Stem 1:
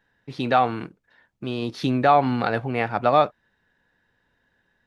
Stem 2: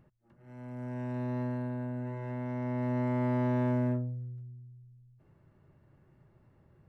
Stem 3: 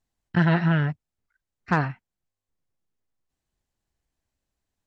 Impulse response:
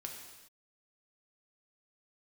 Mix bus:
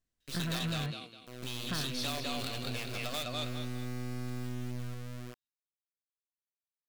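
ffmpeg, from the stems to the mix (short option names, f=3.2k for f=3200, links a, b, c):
-filter_complex "[0:a]aexciter=amount=10.1:drive=6.8:freq=2.6k,volume=-8.5dB,asplit=2[a][b];[b]volume=-11dB[c];[1:a]adynamicequalizer=threshold=0.00501:dfrequency=150:dqfactor=1.8:tfrequency=150:tqfactor=1.8:attack=5:release=100:ratio=0.375:range=2:mode=boostabove:tftype=bell,adelay=750,volume=1dB[d];[2:a]acompressor=threshold=-24dB:ratio=6,volume=-5dB[e];[a][d]amix=inputs=2:normalize=0,acrusher=bits=4:dc=4:mix=0:aa=0.000001,acompressor=threshold=-26dB:ratio=6,volume=0dB[f];[c]aecho=0:1:204|408|612|816:1|0.31|0.0961|0.0298[g];[e][f][g]amix=inputs=3:normalize=0,equalizer=f=850:w=5:g=-13.5,asoftclip=type=tanh:threshold=-29.5dB"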